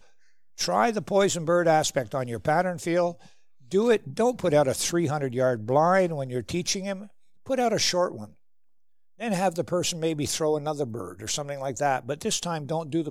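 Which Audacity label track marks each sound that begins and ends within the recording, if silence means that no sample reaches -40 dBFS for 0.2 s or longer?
0.580000	3.260000	sound
3.720000	7.070000	sound
7.460000	8.290000	sound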